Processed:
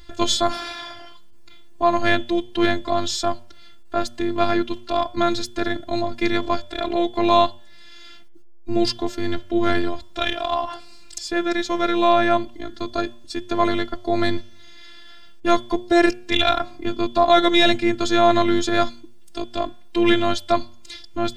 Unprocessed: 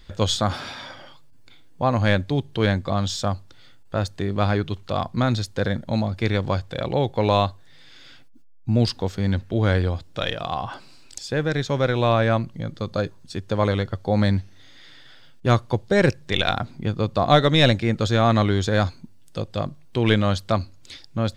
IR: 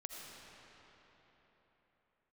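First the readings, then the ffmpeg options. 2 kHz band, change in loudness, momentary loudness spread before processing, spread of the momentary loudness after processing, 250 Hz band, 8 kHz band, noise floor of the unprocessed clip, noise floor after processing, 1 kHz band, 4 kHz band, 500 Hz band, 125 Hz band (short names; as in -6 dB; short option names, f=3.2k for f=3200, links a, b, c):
+2.5 dB, +1.5 dB, 12 LU, 13 LU, +2.5 dB, +3.5 dB, -46 dBFS, -40 dBFS, +4.5 dB, +3.0 dB, +2.0 dB, -14.0 dB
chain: -af "afftfilt=real='hypot(re,im)*cos(PI*b)':imag='0':win_size=512:overlap=0.75,apsyclip=9dB,bandreject=f=119:t=h:w=4,bandreject=f=238:t=h:w=4,bandreject=f=357:t=h:w=4,bandreject=f=476:t=h:w=4,bandreject=f=595:t=h:w=4,bandreject=f=714:t=h:w=4,bandreject=f=833:t=h:w=4,bandreject=f=952:t=h:w=4,bandreject=f=1.071k:t=h:w=4,bandreject=f=1.19k:t=h:w=4,bandreject=f=1.309k:t=h:w=4,bandreject=f=1.428k:t=h:w=4,bandreject=f=1.547k:t=h:w=4,bandreject=f=1.666k:t=h:w=4,bandreject=f=1.785k:t=h:w=4,bandreject=f=1.904k:t=h:w=4,bandreject=f=2.023k:t=h:w=4,bandreject=f=2.142k:t=h:w=4,bandreject=f=2.261k:t=h:w=4,bandreject=f=2.38k:t=h:w=4,bandreject=f=2.499k:t=h:w=4,bandreject=f=2.618k:t=h:w=4,bandreject=f=2.737k:t=h:w=4,bandreject=f=2.856k:t=h:w=4,bandreject=f=2.975k:t=h:w=4,bandreject=f=3.094k:t=h:w=4,bandreject=f=3.213k:t=h:w=4,bandreject=f=3.332k:t=h:w=4,bandreject=f=3.451k:t=h:w=4,volume=-2dB"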